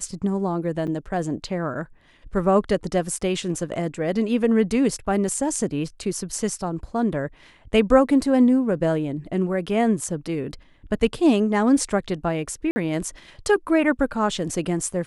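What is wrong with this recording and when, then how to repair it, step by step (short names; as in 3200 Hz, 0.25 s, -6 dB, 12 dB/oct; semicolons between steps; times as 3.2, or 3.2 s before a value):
0.87–0.88 gap 6.9 ms
12.71–12.76 gap 50 ms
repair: interpolate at 0.87, 6.9 ms; interpolate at 12.71, 50 ms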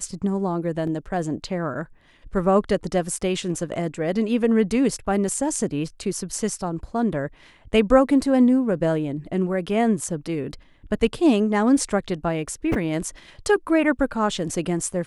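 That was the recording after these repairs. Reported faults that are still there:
none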